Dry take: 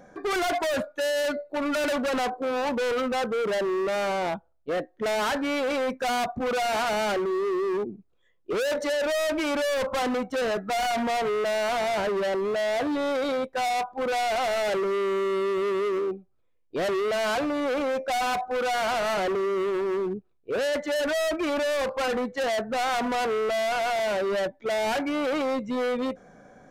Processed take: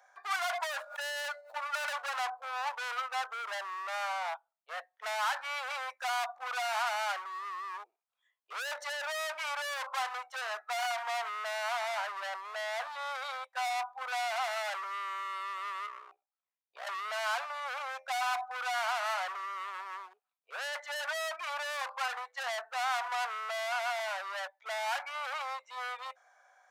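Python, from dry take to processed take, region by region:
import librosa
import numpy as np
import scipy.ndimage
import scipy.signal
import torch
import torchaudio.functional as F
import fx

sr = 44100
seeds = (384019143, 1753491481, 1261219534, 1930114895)

y = fx.chain(x, sr, fx.median_filter(points=9),
    fx.pre_swell(db_per_s=72.0), at=(0.73, 2.18))
y = fx.chain(y, sr, fx.peak_eq(hz=14000.0, db=-7.5, octaves=2.8),
    fx.ring_mod(carrier_hz=31.0), at=(15.86, 16.87))
y = scipy.signal.sosfilt(scipy.signal.butter(6, 750.0, 'highpass', fs=sr, output='sos'), y)
y = fx.dynamic_eq(y, sr, hz=1200.0, q=1.2, threshold_db=-40.0, ratio=4.0, max_db=4)
y = y * librosa.db_to_amplitude(-6.0)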